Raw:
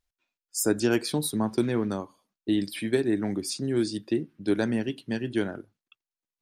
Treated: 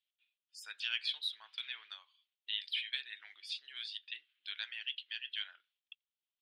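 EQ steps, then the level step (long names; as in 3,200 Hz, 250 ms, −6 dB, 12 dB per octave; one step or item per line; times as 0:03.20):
four-pole ladder high-pass 2,900 Hz, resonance 60%
high-frequency loss of the air 470 metres
high-shelf EQ 8,800 Hz −11.5 dB
+18.0 dB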